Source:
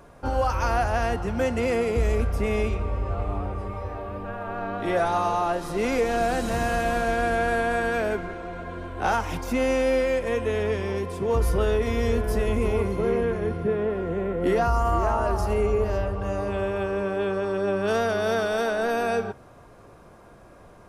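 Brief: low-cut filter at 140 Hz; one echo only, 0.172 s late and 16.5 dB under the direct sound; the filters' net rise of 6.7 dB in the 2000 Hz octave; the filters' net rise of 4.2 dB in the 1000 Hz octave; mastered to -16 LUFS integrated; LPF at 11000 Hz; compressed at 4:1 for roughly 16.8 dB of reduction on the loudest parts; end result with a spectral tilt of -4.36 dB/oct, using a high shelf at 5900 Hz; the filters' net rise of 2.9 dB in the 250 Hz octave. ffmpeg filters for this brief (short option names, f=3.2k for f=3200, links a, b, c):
-af "highpass=140,lowpass=11k,equalizer=f=250:t=o:g=4,equalizer=f=1k:t=o:g=4,equalizer=f=2k:t=o:g=8,highshelf=f=5.9k:g=-7,acompressor=threshold=-38dB:ratio=4,aecho=1:1:172:0.15,volume=22dB"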